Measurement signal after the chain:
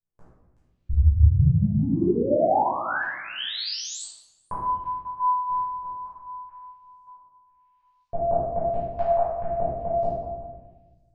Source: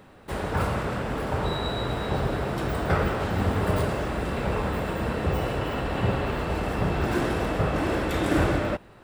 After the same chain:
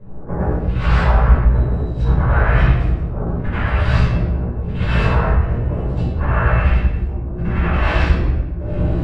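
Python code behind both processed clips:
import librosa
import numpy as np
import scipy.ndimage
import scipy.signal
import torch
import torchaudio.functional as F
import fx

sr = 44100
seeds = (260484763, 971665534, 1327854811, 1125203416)

p1 = fx.phaser_stages(x, sr, stages=2, low_hz=240.0, high_hz=2800.0, hz=0.74, feedback_pct=50)
p2 = fx.peak_eq(p1, sr, hz=3700.0, db=-6.5, octaves=1.4)
p3 = fx.doubler(p2, sr, ms=17.0, db=-2.5)
p4 = p3 + fx.echo_single(p3, sr, ms=375, db=-17.0, dry=0)
p5 = fx.over_compress(p4, sr, threshold_db=-30.0, ratio=-0.5)
p6 = fx.filter_lfo_lowpass(p5, sr, shape='saw_up', hz=0.99, low_hz=930.0, high_hz=5200.0, q=1.5)
p7 = fx.low_shelf(p6, sr, hz=130.0, db=8.5)
p8 = fx.room_shoebox(p7, sr, seeds[0], volume_m3=600.0, walls='mixed', distance_m=5.3)
y = p8 * librosa.db_to_amplitude(-5.0)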